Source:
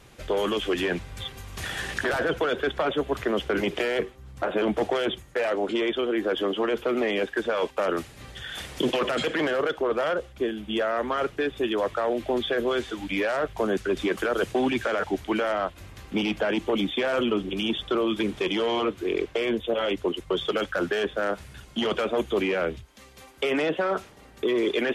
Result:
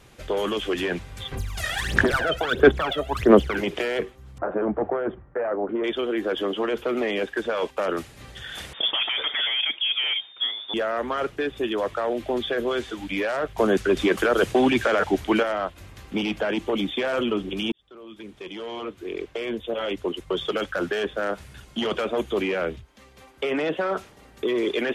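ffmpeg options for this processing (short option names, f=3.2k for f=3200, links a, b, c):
-filter_complex "[0:a]asplit=3[a][b][c];[a]afade=t=out:st=1.31:d=0.02[d];[b]aphaser=in_gain=1:out_gain=1:delay=1.6:decay=0.8:speed=1.5:type=sinusoidal,afade=t=in:st=1.31:d=0.02,afade=t=out:st=3.56:d=0.02[e];[c]afade=t=in:st=3.56:d=0.02[f];[d][e][f]amix=inputs=3:normalize=0,asettb=1/sr,asplit=3[g][h][i];[g]atrim=end=4.384[j];[h]atrim=start=4.38:end=5.84,asetpts=PTS-STARTPTS,afade=t=in:d=0.004:c=qsin,afade=t=out:st=1.456:d=0.004:c=qsin,lowpass=f=1.5k:w=0.5412,lowpass=f=1.5k:w=1.3066[k];[i]atrim=start=5.836[l];[j][k]acrossfade=d=0.004:c1=hsin:c2=qsin[m];[m][l]acrossfade=d=0.004:c1=qsin:c2=hsin,asettb=1/sr,asplit=3[n][o][p];[n]atrim=end=8.734[q];[o]atrim=start=8.73:end=10.74,asetpts=PTS-STARTPTS,afade=t=in:d=0.004:c=qsin,afade=t=out:st=2.006:d=0.004:c=qsin,lowpass=f=3.1k:t=q:w=0.5098,lowpass=f=3.1k:t=q:w=0.6013,lowpass=f=3.1k:t=q:w=0.9,lowpass=f=3.1k:t=q:w=2.563,afreqshift=-3700[r];[p]atrim=start=10.736[s];[q][r]acrossfade=d=0.004:c1=hsin:c2=qsin[t];[t][s]acrossfade=d=0.004:c1=qsin:c2=hsin,asettb=1/sr,asplit=3[u][v][w];[u]atrim=end=22.764[x];[v]atrim=start=22.76:end=23.66,asetpts=PTS-STARTPTS,afade=t=in:d=0.004:c=qsin,afade=t=out:st=0.896:d=0.004:c=qsin,highshelf=f=4k:g=-7.5[y];[w]atrim=start=23.656[z];[x][y]acrossfade=d=0.004:c1=hsin:c2=qsin[aa];[aa][z]acrossfade=d=0.004:c1=qsin:c2=hsin,asplit=4[ab][ac][ad][ae];[ab]atrim=end=13.582[af];[ac]atrim=start=13.578:end=15.432,asetpts=PTS-STARTPTS,volume=5dB[ag];[ad]atrim=start=15.428:end=17.72,asetpts=PTS-STARTPTS,afade=t=out:st=2.288:d=0.004:c=hsin[ah];[ae]atrim=start=17.72,asetpts=PTS-STARTPTS,afade=t=in:d=2.64[ai];[af][ag]acrossfade=d=0.004:c1=hsin:c2=hsin[aj];[ah][ai]concat=n=2:v=0:a=1[ak];[aj][ak]acrossfade=d=0.004:c1=hsin:c2=hsin"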